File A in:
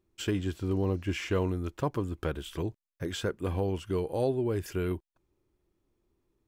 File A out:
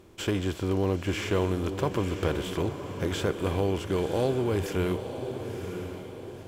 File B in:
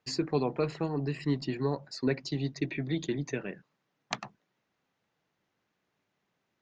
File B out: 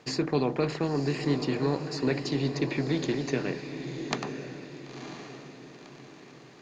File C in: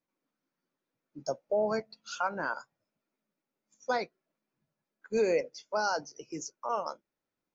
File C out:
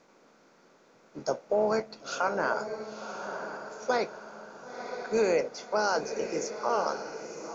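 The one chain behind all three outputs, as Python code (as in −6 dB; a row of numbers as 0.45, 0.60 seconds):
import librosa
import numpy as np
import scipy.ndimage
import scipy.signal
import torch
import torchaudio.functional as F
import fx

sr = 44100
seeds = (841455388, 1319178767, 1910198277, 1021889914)

y = fx.bin_compress(x, sr, power=0.6)
y = fx.echo_diffused(y, sr, ms=995, feedback_pct=43, wet_db=-8)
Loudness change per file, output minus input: +3.0, +3.0, +2.5 LU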